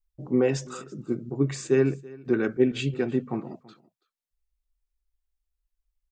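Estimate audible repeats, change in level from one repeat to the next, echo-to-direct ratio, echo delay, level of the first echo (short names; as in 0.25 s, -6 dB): 1, no steady repeat, -22.0 dB, 0.331 s, -22.0 dB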